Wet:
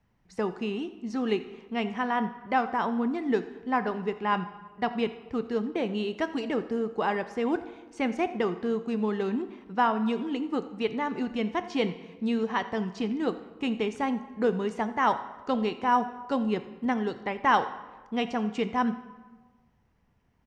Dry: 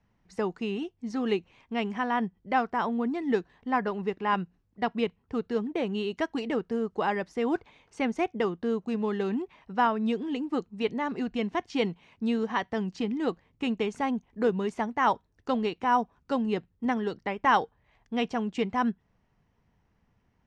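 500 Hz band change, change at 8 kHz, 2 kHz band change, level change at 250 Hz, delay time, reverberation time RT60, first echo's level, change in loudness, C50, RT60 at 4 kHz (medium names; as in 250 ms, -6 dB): +0.5 dB, no reading, +0.5 dB, +0.5 dB, 85 ms, 1.3 s, -19.0 dB, +0.5 dB, 12.5 dB, 0.90 s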